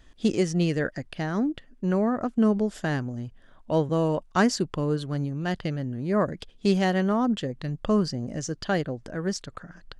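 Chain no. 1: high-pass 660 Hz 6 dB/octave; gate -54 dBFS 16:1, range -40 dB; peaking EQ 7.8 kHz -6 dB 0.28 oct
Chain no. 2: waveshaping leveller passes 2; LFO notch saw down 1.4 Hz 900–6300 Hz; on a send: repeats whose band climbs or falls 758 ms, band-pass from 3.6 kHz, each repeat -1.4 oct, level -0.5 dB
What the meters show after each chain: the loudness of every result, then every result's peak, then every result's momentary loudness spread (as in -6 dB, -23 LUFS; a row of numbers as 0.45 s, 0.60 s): -33.0 LUFS, -20.5 LUFS; -11.5 dBFS, -7.5 dBFS; 10 LU, 7 LU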